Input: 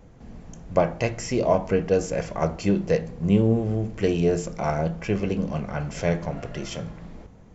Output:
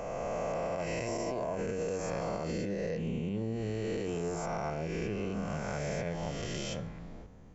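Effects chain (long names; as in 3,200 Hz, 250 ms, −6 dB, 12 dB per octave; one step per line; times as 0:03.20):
peak hold with a rise ahead of every peak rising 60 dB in 2.62 s
brickwall limiter −12 dBFS, peak gain reduction 9.5 dB
downward compressor, threshold −23 dBFS, peak gain reduction 7 dB
level −8 dB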